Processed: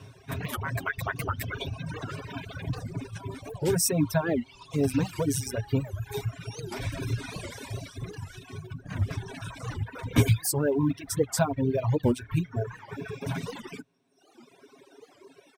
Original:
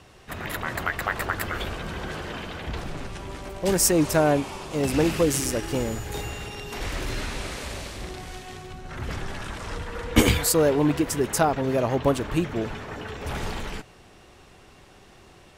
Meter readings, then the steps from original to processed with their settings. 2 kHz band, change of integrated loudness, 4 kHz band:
-6.0 dB, -4.0 dB, -7.0 dB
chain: comb 7.4 ms, depth 74%; reverb removal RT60 1.6 s; spectral repair 12.57–13.17, 1900–6600 Hz both; high-pass sweep 96 Hz -> 340 Hz, 12.33–14.82; in parallel at -12 dB: short-mantissa float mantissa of 2-bit; on the sum: low shelf 190 Hz +8 dB; compressor 1.5:1, threshold -24 dBFS, peak gain reduction 8 dB; reverb removal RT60 1.2 s; ripple EQ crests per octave 1.6, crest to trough 7 dB; record warp 78 rpm, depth 250 cents; gain -5.5 dB

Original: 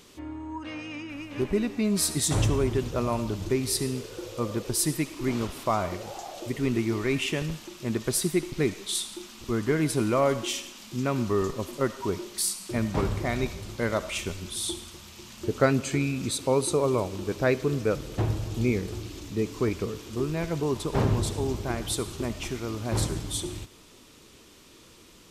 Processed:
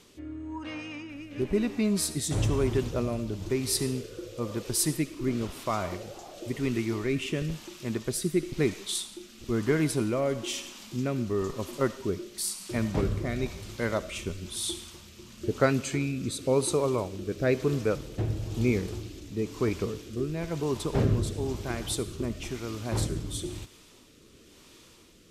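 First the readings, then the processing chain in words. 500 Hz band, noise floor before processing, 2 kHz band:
-1.5 dB, -53 dBFS, -2.5 dB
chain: rotary speaker horn 1 Hz

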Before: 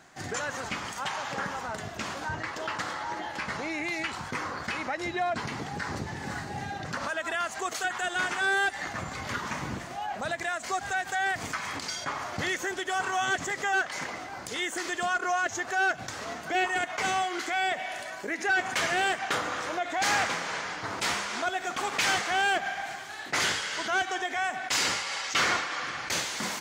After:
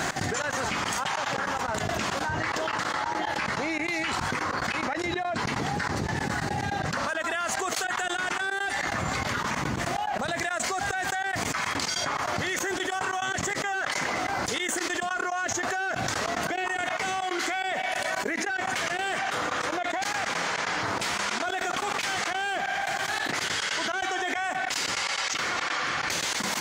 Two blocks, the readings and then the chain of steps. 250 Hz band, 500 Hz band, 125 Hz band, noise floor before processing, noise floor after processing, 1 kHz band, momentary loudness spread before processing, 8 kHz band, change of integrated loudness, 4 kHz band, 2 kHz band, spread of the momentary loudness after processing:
+4.5 dB, +2.5 dB, +5.5 dB, -41 dBFS, -33 dBFS, +1.5 dB, 9 LU, +3.0 dB, +2.0 dB, +1.5 dB, +1.0 dB, 2 LU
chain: limiter -24 dBFS, peak gain reduction 6 dB; step gate "x.xx.xxx..x.x.x." 143 bpm -24 dB; fast leveller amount 100%

